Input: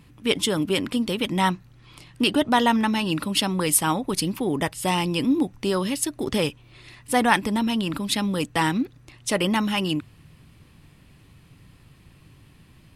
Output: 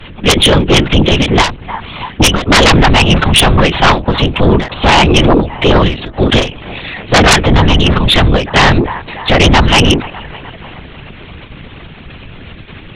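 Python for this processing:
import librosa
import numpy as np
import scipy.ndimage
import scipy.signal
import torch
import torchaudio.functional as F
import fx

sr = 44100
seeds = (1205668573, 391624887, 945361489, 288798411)

p1 = fx.high_shelf(x, sr, hz=2100.0, db=3.0)
p2 = fx.level_steps(p1, sr, step_db=18)
p3 = p1 + (p2 * librosa.db_to_amplitude(2.5))
p4 = fx.low_shelf(p3, sr, hz=180.0, db=-6.0)
p5 = np.clip(10.0 ** (10.5 / 20.0) * p4, -1.0, 1.0) / 10.0 ** (10.5 / 20.0)
p6 = p5 + fx.echo_wet_bandpass(p5, sr, ms=301, feedback_pct=57, hz=1100.0, wet_db=-18.0, dry=0)
p7 = fx.lpc_vocoder(p6, sr, seeds[0], excitation='pitch_kept', order=8)
p8 = fx.whisperise(p7, sr, seeds[1])
p9 = fx.fold_sine(p8, sr, drive_db=15, ceiling_db=-2.5)
y = fx.end_taper(p9, sr, db_per_s=140.0)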